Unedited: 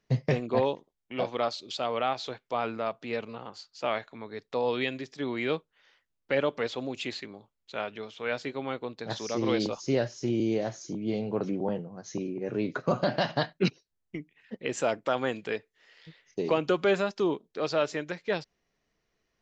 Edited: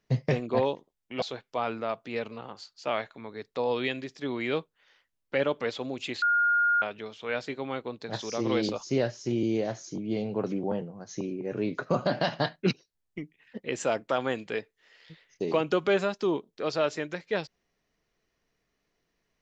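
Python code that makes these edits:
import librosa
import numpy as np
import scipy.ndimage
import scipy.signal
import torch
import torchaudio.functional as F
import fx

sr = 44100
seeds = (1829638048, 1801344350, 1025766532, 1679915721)

y = fx.edit(x, sr, fx.cut(start_s=1.22, length_s=0.97),
    fx.bleep(start_s=7.19, length_s=0.6, hz=1420.0, db=-20.5), tone=tone)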